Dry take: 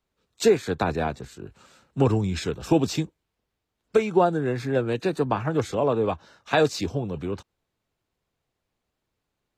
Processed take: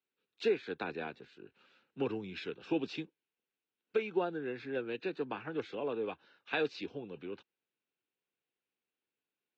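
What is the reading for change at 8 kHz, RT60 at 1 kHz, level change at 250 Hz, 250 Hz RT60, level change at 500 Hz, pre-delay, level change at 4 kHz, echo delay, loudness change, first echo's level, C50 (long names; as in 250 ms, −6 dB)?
below −25 dB, no reverb audible, −13.5 dB, no reverb audible, −12.5 dB, no reverb audible, −11.0 dB, no echo audible, −13.0 dB, no echo audible, no reverb audible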